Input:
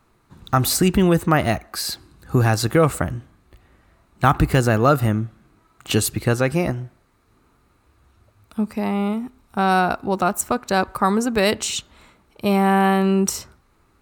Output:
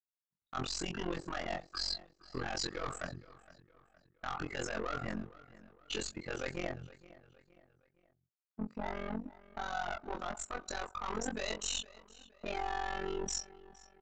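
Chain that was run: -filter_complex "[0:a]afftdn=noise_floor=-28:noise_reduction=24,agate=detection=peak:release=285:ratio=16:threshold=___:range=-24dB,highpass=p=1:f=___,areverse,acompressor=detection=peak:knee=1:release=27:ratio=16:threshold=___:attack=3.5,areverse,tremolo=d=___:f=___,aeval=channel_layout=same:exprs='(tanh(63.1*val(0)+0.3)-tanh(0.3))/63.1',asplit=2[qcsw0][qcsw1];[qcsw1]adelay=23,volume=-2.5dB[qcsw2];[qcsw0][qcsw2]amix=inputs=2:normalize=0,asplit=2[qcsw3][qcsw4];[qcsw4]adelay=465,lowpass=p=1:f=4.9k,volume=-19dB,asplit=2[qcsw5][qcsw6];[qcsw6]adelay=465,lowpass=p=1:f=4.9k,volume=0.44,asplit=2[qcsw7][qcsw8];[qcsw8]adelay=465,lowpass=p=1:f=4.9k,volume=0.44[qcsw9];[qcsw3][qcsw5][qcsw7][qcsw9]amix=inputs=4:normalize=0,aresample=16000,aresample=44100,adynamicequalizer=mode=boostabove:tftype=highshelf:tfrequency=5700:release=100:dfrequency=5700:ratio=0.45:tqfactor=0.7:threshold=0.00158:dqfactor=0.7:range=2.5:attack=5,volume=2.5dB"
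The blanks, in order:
-39dB, 1.1k, -31dB, 0.974, 45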